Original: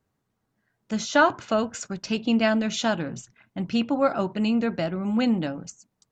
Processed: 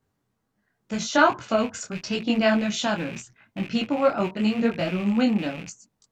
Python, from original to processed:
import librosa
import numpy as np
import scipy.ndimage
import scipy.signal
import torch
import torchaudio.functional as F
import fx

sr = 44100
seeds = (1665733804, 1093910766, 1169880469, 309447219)

y = fx.rattle_buzz(x, sr, strikes_db=-37.0, level_db=-27.0)
y = fx.detune_double(y, sr, cents=29)
y = y * 10.0 ** (4.5 / 20.0)